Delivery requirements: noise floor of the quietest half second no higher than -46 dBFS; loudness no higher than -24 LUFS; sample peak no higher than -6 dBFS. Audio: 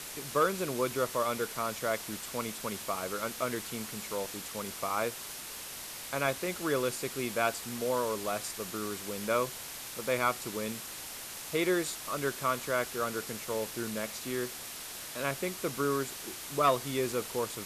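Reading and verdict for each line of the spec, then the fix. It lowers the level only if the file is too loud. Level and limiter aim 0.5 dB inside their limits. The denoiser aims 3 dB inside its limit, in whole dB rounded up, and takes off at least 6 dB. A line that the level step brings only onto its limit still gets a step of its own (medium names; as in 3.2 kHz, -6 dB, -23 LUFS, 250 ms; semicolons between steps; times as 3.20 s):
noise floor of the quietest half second -43 dBFS: fail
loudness -33.5 LUFS: pass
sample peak -16.0 dBFS: pass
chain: noise reduction 6 dB, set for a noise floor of -43 dBFS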